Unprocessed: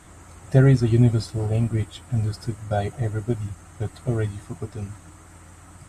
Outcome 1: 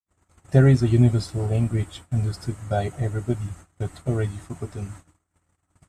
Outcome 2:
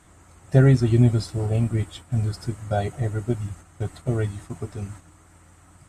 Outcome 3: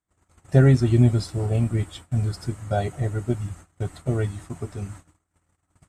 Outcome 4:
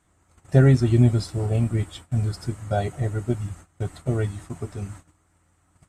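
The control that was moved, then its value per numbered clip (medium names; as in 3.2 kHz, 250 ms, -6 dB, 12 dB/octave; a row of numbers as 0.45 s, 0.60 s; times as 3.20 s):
gate, range: -59 dB, -6 dB, -39 dB, -18 dB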